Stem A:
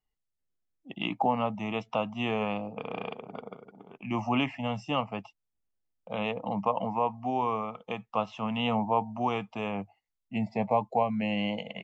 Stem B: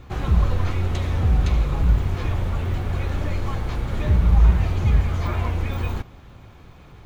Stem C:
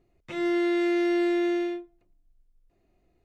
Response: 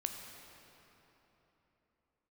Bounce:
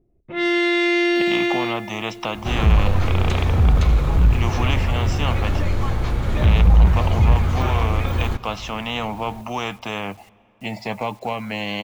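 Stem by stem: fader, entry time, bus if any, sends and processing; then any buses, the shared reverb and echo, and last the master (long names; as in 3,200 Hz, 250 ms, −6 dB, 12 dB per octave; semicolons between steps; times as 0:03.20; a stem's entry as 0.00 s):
+3.0 dB, 0.30 s, send −19.5 dB, bit reduction 12 bits; every bin compressed towards the loudest bin 2 to 1
+2.5 dB, 2.35 s, send −12.5 dB, no processing
+1.5 dB, 0.00 s, send −5 dB, low-pass that shuts in the quiet parts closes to 410 Hz, open at −23.5 dBFS; parametric band 3,100 Hz +11.5 dB 1.9 octaves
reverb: on, RT60 3.7 s, pre-delay 12 ms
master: soft clipping −5.5 dBFS, distortion −19 dB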